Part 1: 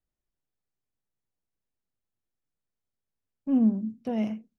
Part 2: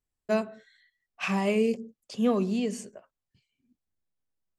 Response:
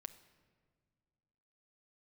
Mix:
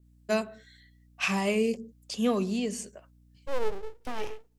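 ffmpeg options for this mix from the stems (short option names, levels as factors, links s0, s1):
-filter_complex "[0:a]aeval=exprs='abs(val(0))':c=same,acontrast=79,volume=0.316,asplit=3[s0][s1][s2];[s1]volume=0.0631[s3];[1:a]aeval=exprs='val(0)+0.00158*(sin(2*PI*60*n/s)+sin(2*PI*2*60*n/s)/2+sin(2*PI*3*60*n/s)/3+sin(2*PI*4*60*n/s)/4+sin(2*PI*5*60*n/s)/5)':c=same,adynamicequalizer=threshold=0.00562:dfrequency=1800:dqfactor=0.7:tfrequency=1800:tqfactor=0.7:attack=5:release=100:ratio=0.375:range=3.5:mode=cutabove:tftype=highshelf,volume=0.794[s4];[s2]apad=whole_len=202188[s5];[s4][s5]sidechaincompress=threshold=0.00447:ratio=8:attack=16:release=400[s6];[2:a]atrim=start_sample=2205[s7];[s3][s7]afir=irnorm=-1:irlink=0[s8];[s0][s6][s8]amix=inputs=3:normalize=0,highshelf=f=2300:g=11"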